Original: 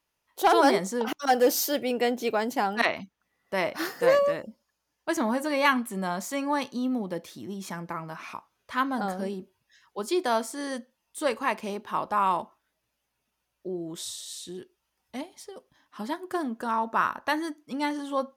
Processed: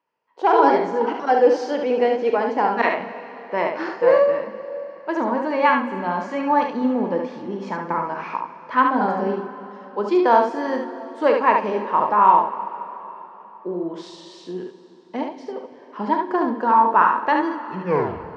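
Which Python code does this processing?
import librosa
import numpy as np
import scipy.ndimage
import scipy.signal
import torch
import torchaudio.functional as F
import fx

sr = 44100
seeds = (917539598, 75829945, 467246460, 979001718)

y = fx.tape_stop_end(x, sr, length_s=0.82)
y = fx.low_shelf(y, sr, hz=390.0, db=10.0)
y = fx.rider(y, sr, range_db=4, speed_s=2.0)
y = fx.cabinet(y, sr, low_hz=270.0, low_slope=12, high_hz=4300.0, hz=(470.0, 940.0, 1600.0, 3700.0), db=(6, 10, 3, -10))
y = fx.room_early_taps(y, sr, ms=(39, 72), db=(-10.0, -4.5))
y = fx.rev_plate(y, sr, seeds[0], rt60_s=3.9, hf_ratio=0.95, predelay_ms=0, drr_db=11.5)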